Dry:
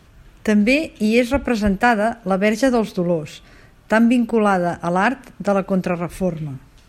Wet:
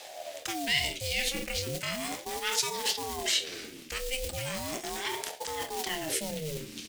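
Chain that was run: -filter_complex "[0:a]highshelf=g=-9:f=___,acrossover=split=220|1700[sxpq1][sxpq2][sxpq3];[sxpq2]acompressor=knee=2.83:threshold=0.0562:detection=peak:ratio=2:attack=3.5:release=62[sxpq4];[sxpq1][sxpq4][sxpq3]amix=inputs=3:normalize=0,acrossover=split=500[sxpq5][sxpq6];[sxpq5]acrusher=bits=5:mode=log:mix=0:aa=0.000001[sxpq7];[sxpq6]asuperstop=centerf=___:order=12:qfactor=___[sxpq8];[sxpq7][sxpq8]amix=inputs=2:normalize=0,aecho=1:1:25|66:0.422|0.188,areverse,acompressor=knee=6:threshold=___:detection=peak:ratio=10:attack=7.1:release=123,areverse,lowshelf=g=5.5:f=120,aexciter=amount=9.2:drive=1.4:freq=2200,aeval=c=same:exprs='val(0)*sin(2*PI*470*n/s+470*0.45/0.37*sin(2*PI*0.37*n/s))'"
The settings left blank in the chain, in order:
8500, 650, 1.5, 0.0224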